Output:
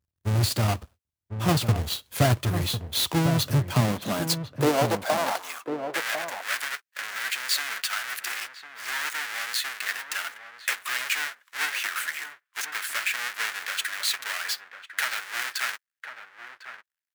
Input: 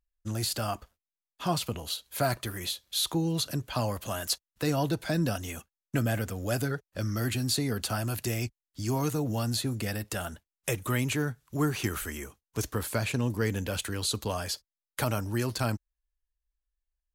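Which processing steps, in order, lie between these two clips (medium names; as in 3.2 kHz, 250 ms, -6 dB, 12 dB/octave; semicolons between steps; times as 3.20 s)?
square wave that keeps the level; high-pass sweep 87 Hz -> 1.7 kHz, 3.38–5.91 s; harmony voices -3 st -17 dB; echo from a far wall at 180 m, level -8 dB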